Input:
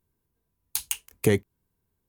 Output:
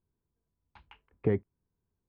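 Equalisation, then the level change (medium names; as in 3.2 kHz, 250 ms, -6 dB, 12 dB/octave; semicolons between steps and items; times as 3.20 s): low-pass 1.6 kHz 12 dB/octave; distance through air 370 m; -5.0 dB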